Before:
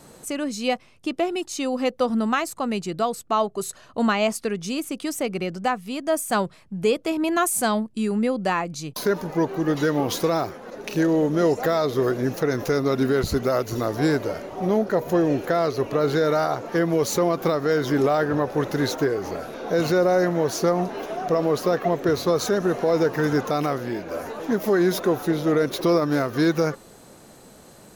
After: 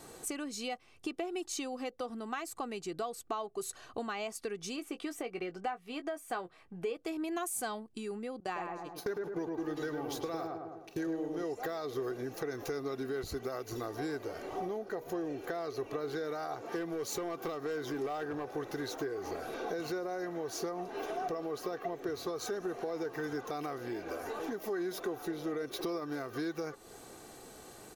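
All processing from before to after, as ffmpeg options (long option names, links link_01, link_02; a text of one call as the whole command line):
ffmpeg -i in.wav -filter_complex "[0:a]asettb=1/sr,asplit=3[link_01][link_02][link_03];[link_01]atrim=end=4.764[link_04];[link_02]atrim=start=4.76:end=6.97,asetpts=PTS-STARTPTS,afade=type=in:duration=0.004:curve=qsin,afade=type=out:start_time=2.206:duration=0.004:curve=qsin,bass=frequency=250:gain=-6,treble=frequency=4000:gain=-11,asplit=2[link_05][link_06];[link_06]adelay=17,volume=-9.5dB[link_07];[link_05][link_07]amix=inputs=2:normalize=0,atrim=end_sample=97461[link_08];[link_03]atrim=start=6.966[link_09];[link_04][link_08]acrossfade=duration=0.004:curve1=hsin:curve2=qsin[link_10];[link_10][link_09]acrossfade=duration=0.004:curve1=qsin:curve2=hsin,asettb=1/sr,asplit=3[link_11][link_12][link_13];[link_11]atrim=end=8.404[link_14];[link_12]atrim=start=8.4:end=11.44,asetpts=PTS-STARTPTS,afade=type=in:duration=0.004:curve=qsin,afade=type=out:start_time=3.036:duration=0.004:curve=qsin,agate=range=-23dB:threshold=-30dB:ratio=16:release=100:detection=peak,asplit=2[link_15][link_16];[link_16]adelay=104,lowpass=frequency=1500:poles=1,volume=-3dB,asplit=2[link_17][link_18];[link_18]adelay=104,lowpass=frequency=1500:poles=1,volume=0.43,asplit=2[link_19][link_20];[link_20]adelay=104,lowpass=frequency=1500:poles=1,volume=0.43,asplit=2[link_21][link_22];[link_22]adelay=104,lowpass=frequency=1500:poles=1,volume=0.43,asplit=2[link_23][link_24];[link_24]adelay=104,lowpass=frequency=1500:poles=1,volume=0.43,asplit=2[link_25][link_26];[link_26]adelay=104,lowpass=frequency=1500:poles=1,volume=0.43[link_27];[link_15][link_17][link_19][link_21][link_23][link_25][link_27]amix=inputs=7:normalize=0,atrim=end_sample=134064[link_28];[link_13]atrim=start=11.436[link_29];[link_14][link_28]acrossfade=duration=0.004:curve1=hsin:curve2=qsin[link_30];[link_30][link_29]acrossfade=duration=0.004:curve1=qsin:curve2=hsin,asettb=1/sr,asplit=3[link_31][link_32][link_33];[link_31]atrim=end=16.634[link_34];[link_32]atrim=start=16.63:end=18.54,asetpts=PTS-STARTPTS,afade=type=in:duration=0.004:curve=qsin,afade=type=out:start_time=1.906:duration=0.004:curve=qsin,highpass=55,asoftclip=type=hard:threshold=-15.5dB[link_35];[link_33]atrim=start=18.536[link_36];[link_34][link_35]acrossfade=duration=0.004:curve1=hsin:curve2=qsin[link_37];[link_37][link_36]acrossfade=duration=0.004:curve1=qsin:curve2=hsin,acompressor=threshold=-32dB:ratio=6,lowshelf=frequency=230:gain=-4.5,aecho=1:1:2.6:0.44,volume=-3dB" out.wav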